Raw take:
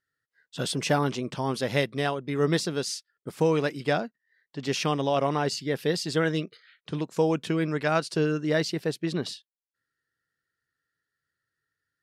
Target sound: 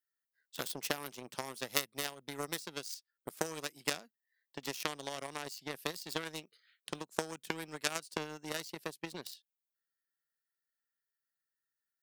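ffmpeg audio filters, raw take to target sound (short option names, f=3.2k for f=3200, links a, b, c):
-filter_complex "[0:a]acrossover=split=180|6300[a][b][c];[a]acompressor=threshold=-43dB:ratio=4[d];[b]acompressor=threshold=-37dB:ratio=4[e];[c]acompressor=threshold=-52dB:ratio=4[f];[d][e][f]amix=inputs=3:normalize=0,aeval=exprs='0.0891*(cos(1*acos(clip(val(0)/0.0891,-1,1)))-cos(1*PI/2))+0.0316*(cos(3*acos(clip(val(0)/0.0891,-1,1)))-cos(3*PI/2))+0.00224*(cos(5*acos(clip(val(0)/0.0891,-1,1)))-cos(5*PI/2))':c=same,aemphasis=mode=production:type=bsi,volume=9.5dB"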